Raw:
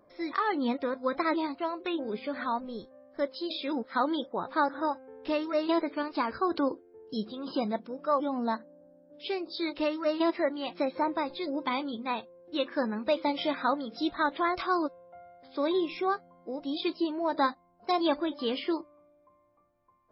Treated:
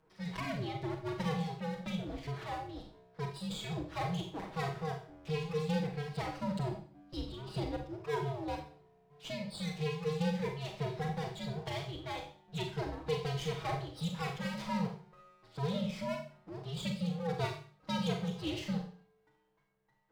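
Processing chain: comb filter that takes the minimum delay 6.3 ms; dynamic bell 1.5 kHz, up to -8 dB, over -47 dBFS, Q 1.5; frequency shift -150 Hz; Schroeder reverb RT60 0.44 s, combs from 30 ms, DRR 3 dB; trim -6 dB

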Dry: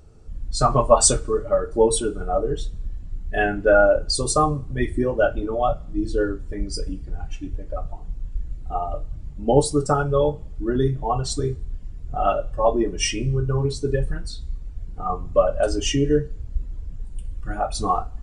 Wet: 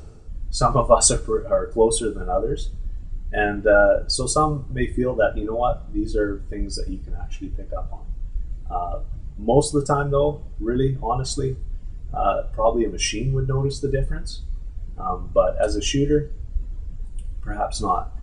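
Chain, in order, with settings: reverse; upward compressor, threshold -27 dBFS; reverse; resampled via 22.05 kHz

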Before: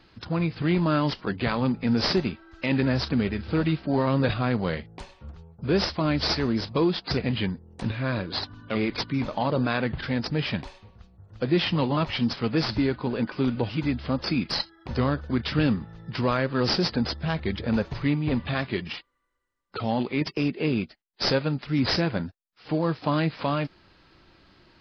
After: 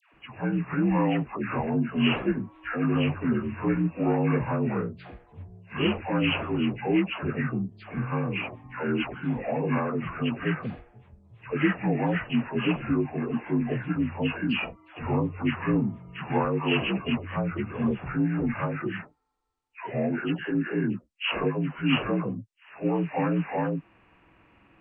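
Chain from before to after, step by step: frequency axis rescaled in octaves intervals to 81%; phase dispersion lows, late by 131 ms, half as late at 930 Hz

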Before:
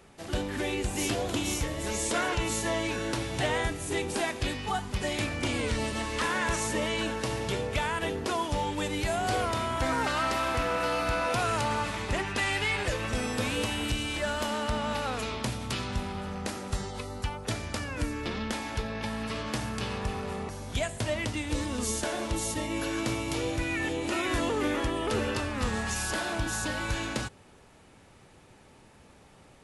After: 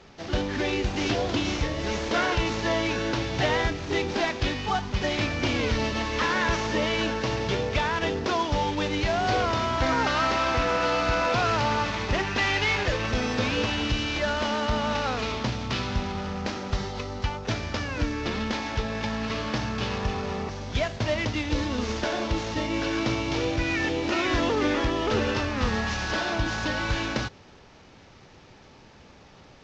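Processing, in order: CVSD coder 32 kbps; trim +4.5 dB

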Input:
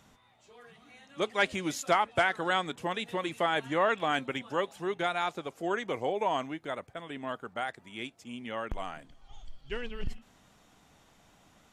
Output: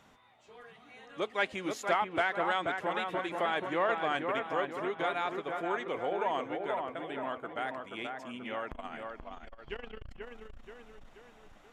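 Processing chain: tone controls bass -7 dB, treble -8 dB; in parallel at 0 dB: compression, threshold -41 dBFS, peak gain reduction 19 dB; on the sum: feedback echo behind a low-pass 482 ms, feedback 48%, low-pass 2.2 kHz, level -4.5 dB; transformer saturation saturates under 640 Hz; trim -4 dB

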